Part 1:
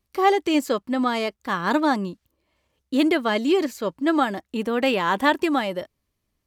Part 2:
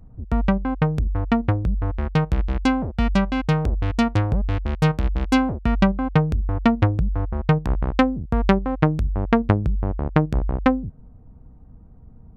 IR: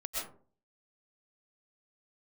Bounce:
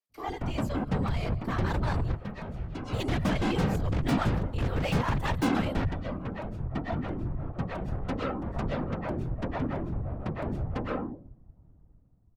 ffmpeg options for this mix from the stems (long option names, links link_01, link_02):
-filter_complex "[0:a]highpass=460,volume=-9.5dB,asplit=3[link_01][link_02][link_03];[link_02]volume=-22.5dB[link_04];[1:a]adelay=100,volume=-3.5dB,asplit=2[link_05][link_06];[link_06]volume=-16.5dB[link_07];[link_03]apad=whole_len=549764[link_08];[link_05][link_08]sidechaingate=range=-33dB:threshold=-49dB:ratio=16:detection=peak[link_09];[2:a]atrim=start_sample=2205[link_10];[link_04][link_07]amix=inputs=2:normalize=0[link_11];[link_11][link_10]afir=irnorm=-1:irlink=0[link_12];[link_01][link_09][link_12]amix=inputs=3:normalize=0,dynaudnorm=framelen=250:gausssize=7:maxgain=13.5dB,asoftclip=type=tanh:threshold=-17.5dB,afftfilt=real='hypot(re,im)*cos(2*PI*random(0))':imag='hypot(re,im)*sin(2*PI*random(1))':win_size=512:overlap=0.75"